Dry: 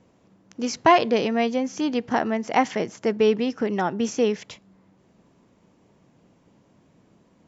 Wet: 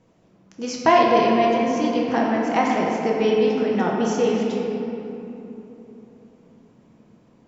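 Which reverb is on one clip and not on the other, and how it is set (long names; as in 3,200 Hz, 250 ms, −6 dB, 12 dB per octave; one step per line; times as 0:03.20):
rectangular room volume 190 cubic metres, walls hard, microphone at 0.64 metres
level −2.5 dB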